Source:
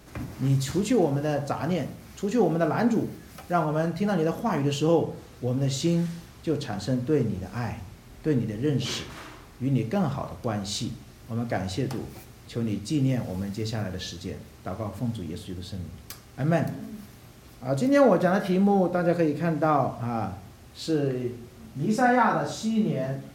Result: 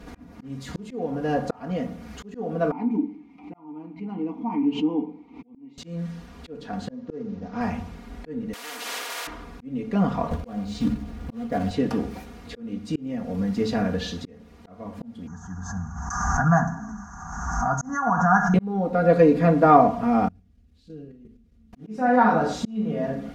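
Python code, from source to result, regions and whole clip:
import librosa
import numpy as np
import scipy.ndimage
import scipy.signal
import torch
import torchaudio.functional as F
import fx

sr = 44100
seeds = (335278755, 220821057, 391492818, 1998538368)

y = fx.chain(x, sr, fx.vowel_filter(vowel='u'),
    fx.pre_swell(db_per_s=120.0), at=(2.71, 5.78))
y = fx.chain(y, sr, fx.cvsd(bps=32000),
    fx.highpass(hz=120.0, slope=6),
    fx.peak_eq(hz=3100.0, db=-6.5, octaves=1.8), at=(6.9, 7.61))
y = fx.chain(y, sr, fx.highpass(hz=1200.0, slope=24),
    fx.spectral_comp(ratio=10.0), at=(8.53, 9.27))
y = fx.chain(y, sr, fx.tilt_eq(slope=-2.0),
    fx.quant_float(bits=2),
    fx.doubler(ms=14.0, db=-8.5), at=(10.31, 11.71))
y = fx.chain(y, sr, fx.curve_eq(hz=(160.0, 270.0, 550.0, 780.0, 1600.0, 2300.0, 4100.0, 6400.0, 9400.0), db=(0, -15, -26, 7, 7, -29, -29, 14, -26)),
    fx.pre_swell(db_per_s=32.0), at=(15.27, 18.54))
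y = fx.chain(y, sr, fx.tone_stack(knobs='10-0-1'),
    fx.level_steps(step_db=9), at=(20.28, 21.73))
y = fx.lowpass(y, sr, hz=1900.0, slope=6)
y = y + 0.89 * np.pad(y, (int(4.2 * sr / 1000.0), 0))[:len(y)]
y = fx.auto_swell(y, sr, attack_ms=686.0)
y = y * librosa.db_to_amplitude(6.0)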